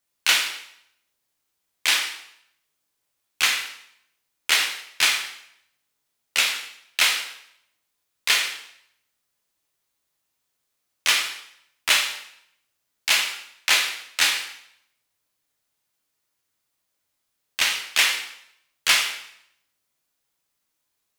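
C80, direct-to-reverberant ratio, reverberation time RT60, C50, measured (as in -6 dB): 9.0 dB, 1.5 dB, 0.70 s, 6.0 dB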